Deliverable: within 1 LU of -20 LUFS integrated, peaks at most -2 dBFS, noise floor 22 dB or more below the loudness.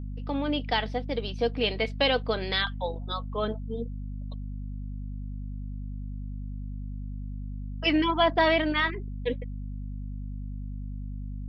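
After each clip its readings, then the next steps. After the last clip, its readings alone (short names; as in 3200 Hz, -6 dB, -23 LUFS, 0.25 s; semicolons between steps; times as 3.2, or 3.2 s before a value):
hum 50 Hz; harmonics up to 250 Hz; hum level -33 dBFS; loudness -30.0 LUFS; peak -11.0 dBFS; loudness target -20.0 LUFS
-> de-hum 50 Hz, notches 5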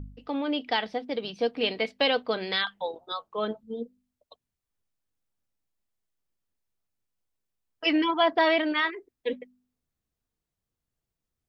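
hum none; loudness -27.5 LUFS; peak -11.5 dBFS; loudness target -20.0 LUFS
-> gain +7.5 dB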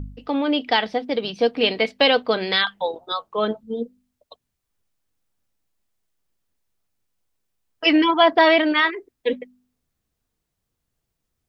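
loudness -20.0 LUFS; peak -4.0 dBFS; noise floor -79 dBFS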